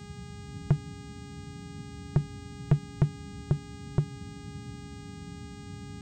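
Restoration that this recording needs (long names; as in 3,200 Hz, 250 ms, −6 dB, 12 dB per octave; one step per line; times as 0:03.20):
clipped peaks rebuilt −14.5 dBFS
hum removal 410.3 Hz, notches 21
notch filter 280 Hz, Q 30
noise reduction from a noise print 30 dB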